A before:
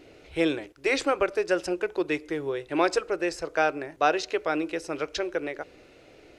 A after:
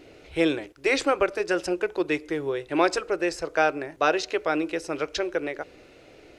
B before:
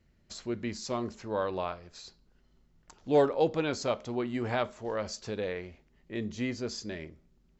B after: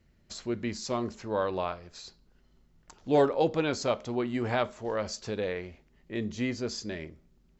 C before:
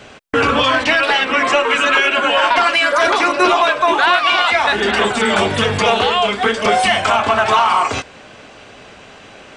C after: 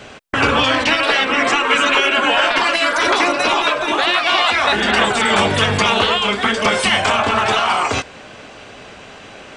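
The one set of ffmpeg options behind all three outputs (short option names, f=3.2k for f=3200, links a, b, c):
-af "afftfilt=real='re*lt(hypot(re,im),1)':imag='im*lt(hypot(re,im),1)':win_size=1024:overlap=0.75,volume=2dB"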